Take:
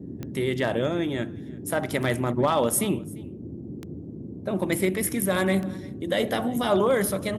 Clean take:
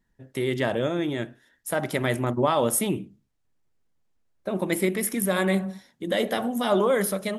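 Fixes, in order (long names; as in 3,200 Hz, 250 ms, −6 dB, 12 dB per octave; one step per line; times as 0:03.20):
clipped peaks rebuilt −13 dBFS
click removal
noise reduction from a noise print 30 dB
echo removal 346 ms −23 dB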